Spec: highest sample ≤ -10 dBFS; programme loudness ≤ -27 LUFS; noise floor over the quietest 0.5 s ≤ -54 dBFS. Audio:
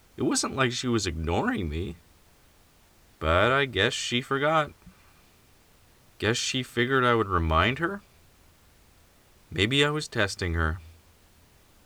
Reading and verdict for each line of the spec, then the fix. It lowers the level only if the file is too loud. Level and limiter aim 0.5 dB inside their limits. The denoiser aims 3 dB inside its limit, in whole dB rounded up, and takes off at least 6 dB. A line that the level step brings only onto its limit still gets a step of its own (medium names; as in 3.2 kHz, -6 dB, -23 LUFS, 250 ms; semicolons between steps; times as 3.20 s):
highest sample -6.5 dBFS: fail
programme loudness -26.0 LUFS: fail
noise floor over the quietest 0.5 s -59 dBFS: pass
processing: trim -1.5 dB; peak limiter -10.5 dBFS